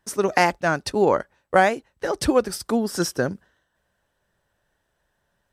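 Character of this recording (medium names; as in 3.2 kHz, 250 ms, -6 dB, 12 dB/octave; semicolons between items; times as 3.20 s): noise floor -74 dBFS; spectral tilt -4.5 dB/octave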